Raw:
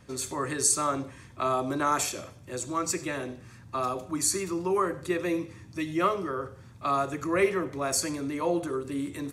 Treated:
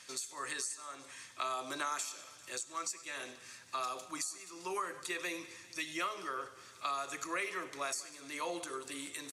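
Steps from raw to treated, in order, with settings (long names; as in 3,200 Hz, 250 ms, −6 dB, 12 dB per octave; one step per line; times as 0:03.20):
first difference
downward compressor 8 to 1, threshold −45 dBFS, peak gain reduction 24.5 dB
high-frequency loss of the air 63 metres
repeating echo 198 ms, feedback 54%, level −19.5 dB
one half of a high-frequency compander encoder only
level +12.5 dB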